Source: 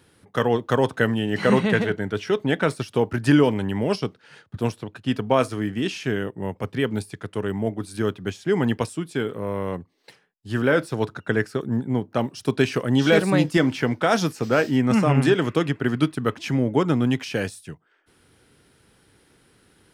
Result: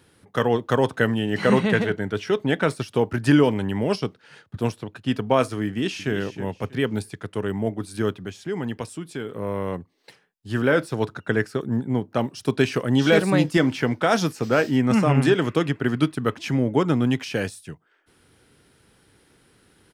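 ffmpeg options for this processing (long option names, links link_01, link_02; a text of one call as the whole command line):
ffmpeg -i in.wav -filter_complex "[0:a]asplit=2[link_01][link_02];[link_02]afade=type=in:start_time=5.67:duration=0.01,afade=type=out:start_time=6.12:duration=0.01,aecho=0:1:320|640|960:0.266073|0.0665181|0.0166295[link_03];[link_01][link_03]amix=inputs=2:normalize=0,asettb=1/sr,asplit=3[link_04][link_05][link_06];[link_04]atrim=end=8.234[link_07];[link_05]atrim=start=8.23:end=9.35,asetpts=PTS-STARTPTS,afade=type=in:duration=0.004:curve=qsin,afade=type=out:start_time=1.116:duration=0.004:curve=qsin,acompressor=threshold=-36dB:ratio=1.5:attack=3.2:release=140:knee=1:detection=peak[link_08];[link_06]atrim=start=9.346[link_09];[link_07][link_08]acrossfade=duration=0.004:curve1=hsin:curve2=qsin[link_10];[link_10][link_09]acrossfade=duration=0.004:curve1=qsin:curve2=hsin" out.wav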